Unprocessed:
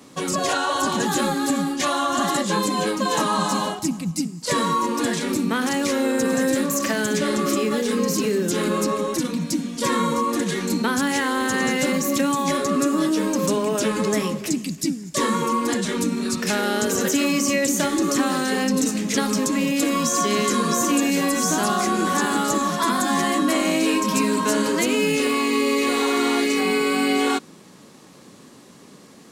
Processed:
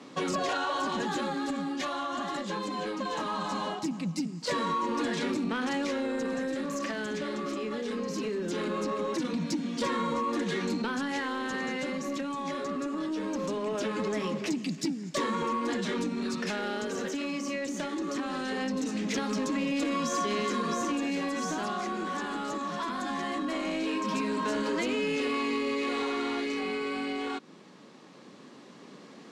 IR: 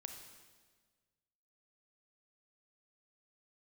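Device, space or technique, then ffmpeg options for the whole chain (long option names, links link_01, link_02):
AM radio: -af "highpass=180,lowpass=4400,acompressor=threshold=-25dB:ratio=6,asoftclip=type=tanh:threshold=-21.5dB,tremolo=f=0.2:d=0.38"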